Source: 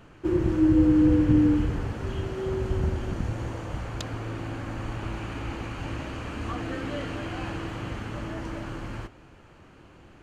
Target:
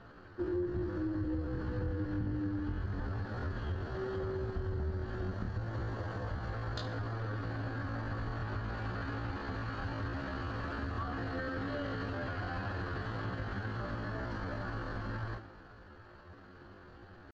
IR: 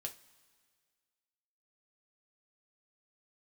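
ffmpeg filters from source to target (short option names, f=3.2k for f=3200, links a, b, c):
-filter_complex "[0:a]lowpass=f=4.4k:t=q:w=3.9,highshelf=f=2k:t=q:w=3:g=-6.5[a];[1:a]atrim=start_sample=2205,afade=t=out:st=0.33:d=0.01,atrim=end_sample=14994[b];[a][b]afir=irnorm=-1:irlink=0,atempo=0.59,acompressor=threshold=-34dB:ratio=4"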